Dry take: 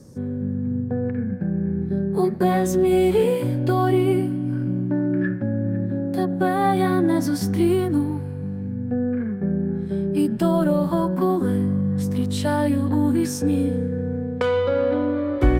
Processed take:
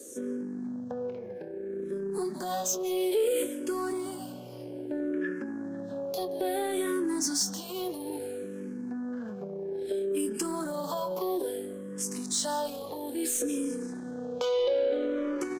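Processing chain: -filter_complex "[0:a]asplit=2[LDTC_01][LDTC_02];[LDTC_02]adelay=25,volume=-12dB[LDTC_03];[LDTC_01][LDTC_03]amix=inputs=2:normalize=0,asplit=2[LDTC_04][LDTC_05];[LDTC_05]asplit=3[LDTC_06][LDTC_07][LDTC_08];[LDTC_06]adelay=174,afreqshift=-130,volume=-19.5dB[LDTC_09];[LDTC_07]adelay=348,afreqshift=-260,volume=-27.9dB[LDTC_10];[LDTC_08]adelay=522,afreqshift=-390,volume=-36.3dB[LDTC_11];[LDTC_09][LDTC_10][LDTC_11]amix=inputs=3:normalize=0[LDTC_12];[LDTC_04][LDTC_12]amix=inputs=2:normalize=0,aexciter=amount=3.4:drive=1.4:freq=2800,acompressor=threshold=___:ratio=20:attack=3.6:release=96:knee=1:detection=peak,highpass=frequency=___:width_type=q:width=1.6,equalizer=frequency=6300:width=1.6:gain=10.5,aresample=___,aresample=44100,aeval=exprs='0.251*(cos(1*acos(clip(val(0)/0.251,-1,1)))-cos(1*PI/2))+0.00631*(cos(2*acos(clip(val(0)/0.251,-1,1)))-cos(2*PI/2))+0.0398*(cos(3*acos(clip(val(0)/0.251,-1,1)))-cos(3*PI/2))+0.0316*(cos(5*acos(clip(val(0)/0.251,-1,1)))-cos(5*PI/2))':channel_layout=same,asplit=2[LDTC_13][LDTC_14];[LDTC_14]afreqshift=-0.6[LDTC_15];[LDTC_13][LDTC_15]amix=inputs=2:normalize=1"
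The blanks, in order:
-25dB, 400, 32000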